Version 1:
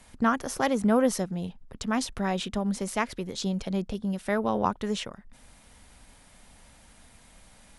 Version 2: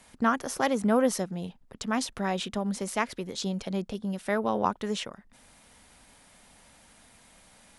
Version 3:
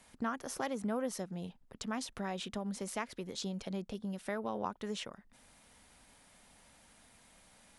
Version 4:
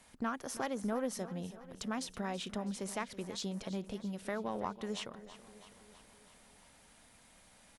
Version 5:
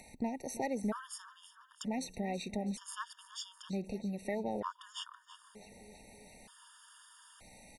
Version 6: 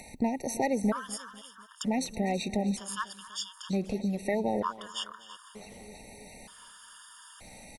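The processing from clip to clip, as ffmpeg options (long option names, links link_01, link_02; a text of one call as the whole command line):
ffmpeg -i in.wav -af "lowshelf=frequency=98:gain=-11.5" out.wav
ffmpeg -i in.wav -af "acompressor=threshold=-31dB:ratio=2,volume=-5.5dB" out.wav
ffmpeg -i in.wav -filter_complex "[0:a]asplit=2[link_01][link_02];[link_02]aeval=exprs='clip(val(0),-1,0.0158)':channel_layout=same,volume=-6dB[link_03];[link_01][link_03]amix=inputs=2:normalize=0,aecho=1:1:327|654|981|1308|1635|1962:0.168|0.101|0.0604|0.0363|0.0218|0.0131,volume=-3.5dB" out.wav
ffmpeg -i in.wav -af "acompressor=mode=upward:threshold=-49dB:ratio=2.5,afftfilt=real='re*gt(sin(2*PI*0.54*pts/sr)*(1-2*mod(floor(b*sr/1024/920),2)),0)':imag='im*gt(sin(2*PI*0.54*pts/sr)*(1-2*mod(floor(b*sr/1024/920),2)),0)':win_size=1024:overlap=0.75,volume=2dB" out.wav
ffmpeg -i in.wav -af "aecho=1:1:247|494|741:0.119|0.0499|0.021,volume=7.5dB" out.wav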